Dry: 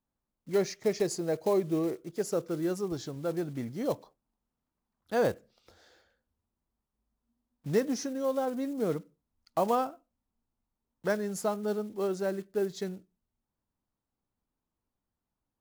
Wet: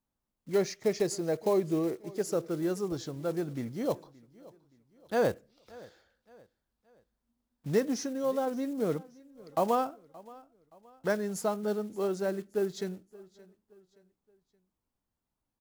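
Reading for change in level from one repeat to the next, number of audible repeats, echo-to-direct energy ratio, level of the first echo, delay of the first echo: −8.0 dB, 2, −21.5 dB, −22.0 dB, 573 ms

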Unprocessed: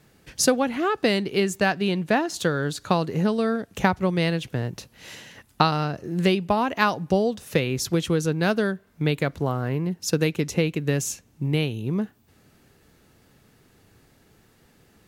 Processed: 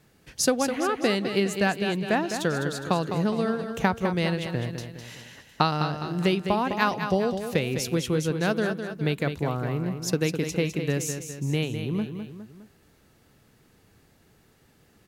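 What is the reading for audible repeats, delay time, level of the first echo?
3, 206 ms, −8.0 dB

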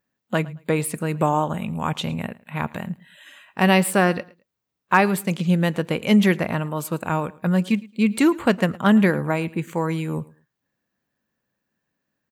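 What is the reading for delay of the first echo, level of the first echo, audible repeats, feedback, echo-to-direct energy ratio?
110 ms, −22.0 dB, 2, 23%, −22.0 dB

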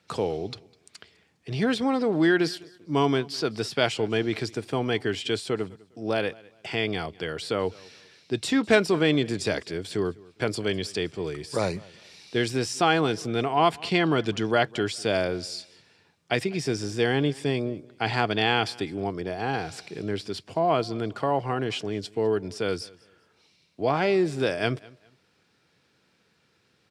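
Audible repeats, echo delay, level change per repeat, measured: 2, 203 ms, −11.0 dB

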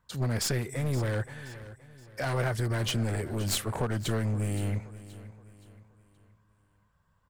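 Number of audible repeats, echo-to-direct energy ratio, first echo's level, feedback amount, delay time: 3, −15.5 dB, −16.0 dB, 40%, 523 ms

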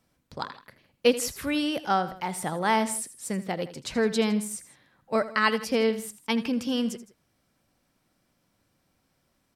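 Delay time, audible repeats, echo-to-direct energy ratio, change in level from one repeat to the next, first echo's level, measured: 81 ms, 2, −14.0 dB, −5.0 dB, −15.0 dB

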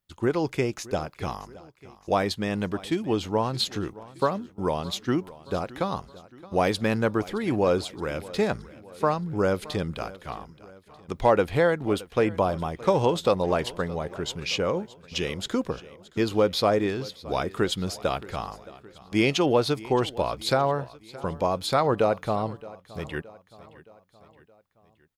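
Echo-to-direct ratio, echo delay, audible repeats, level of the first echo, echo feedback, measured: −18.0 dB, 620 ms, 3, −19.5 dB, 52%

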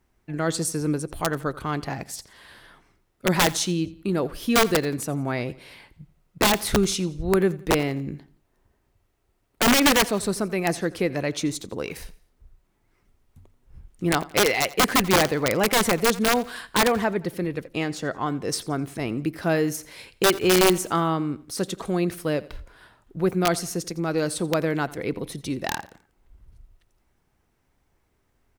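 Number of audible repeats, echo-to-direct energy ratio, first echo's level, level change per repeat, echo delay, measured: 2, −19.0 dB, −20.0 dB, −7.5 dB, 86 ms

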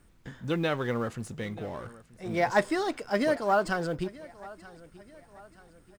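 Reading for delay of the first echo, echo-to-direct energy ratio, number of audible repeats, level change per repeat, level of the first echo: 932 ms, −19.0 dB, 3, −7.0 dB, −20.0 dB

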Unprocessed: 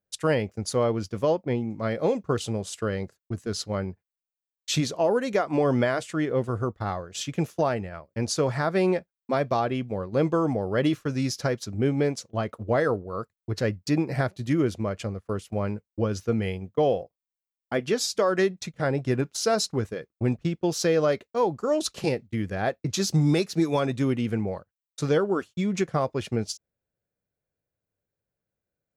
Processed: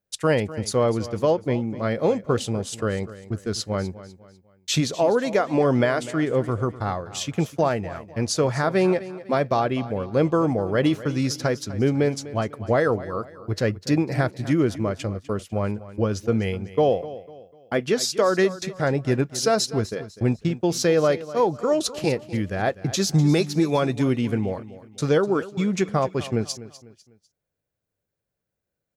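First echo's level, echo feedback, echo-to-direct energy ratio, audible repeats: −16.0 dB, 37%, −15.5 dB, 3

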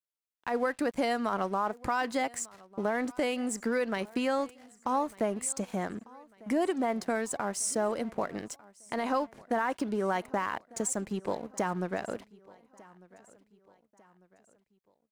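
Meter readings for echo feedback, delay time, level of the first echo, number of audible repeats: 44%, 1,198 ms, −23.0 dB, 2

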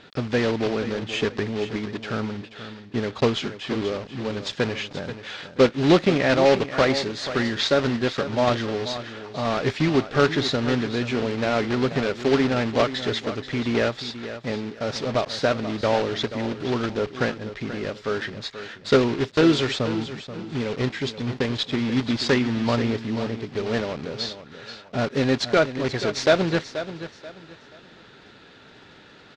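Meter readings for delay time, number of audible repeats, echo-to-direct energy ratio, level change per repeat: 482 ms, 3, −11.5 dB, −11.0 dB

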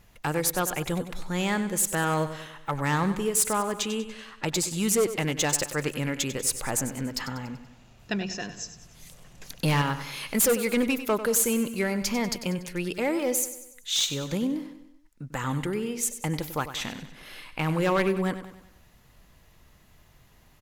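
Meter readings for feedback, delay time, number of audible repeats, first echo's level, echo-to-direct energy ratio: 49%, 96 ms, 4, −12.0 dB, −11.0 dB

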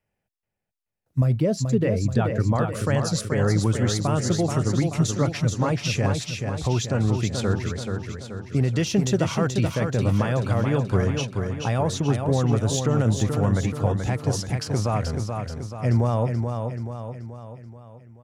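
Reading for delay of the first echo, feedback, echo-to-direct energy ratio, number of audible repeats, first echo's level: 431 ms, 52%, −4.0 dB, 6, −5.5 dB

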